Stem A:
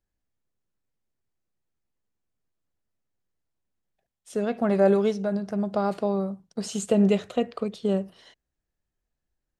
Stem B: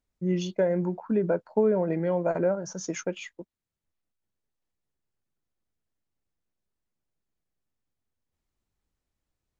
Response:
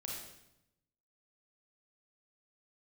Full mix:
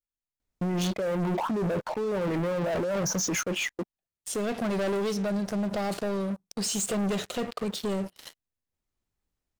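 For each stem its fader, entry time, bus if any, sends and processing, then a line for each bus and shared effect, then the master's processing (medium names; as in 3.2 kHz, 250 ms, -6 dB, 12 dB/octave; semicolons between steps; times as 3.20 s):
-9.0 dB, 0.00 s, no send, treble shelf 3.1 kHz +10.5 dB
+2.5 dB, 0.40 s, no send, compressor with a negative ratio -32 dBFS, ratio -1; auto duck -8 dB, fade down 1.80 s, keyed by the first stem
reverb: none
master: waveshaping leveller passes 5; peak limiter -25 dBFS, peak gain reduction 10 dB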